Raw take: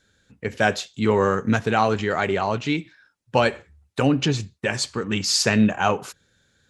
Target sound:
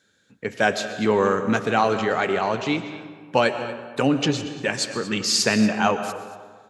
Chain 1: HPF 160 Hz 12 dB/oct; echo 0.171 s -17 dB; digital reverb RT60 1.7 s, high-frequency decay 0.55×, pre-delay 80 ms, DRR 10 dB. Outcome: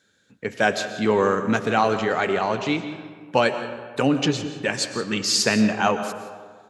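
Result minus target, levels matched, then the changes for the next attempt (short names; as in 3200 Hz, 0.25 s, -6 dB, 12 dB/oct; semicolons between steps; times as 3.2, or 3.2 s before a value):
echo 62 ms early
change: echo 0.233 s -17 dB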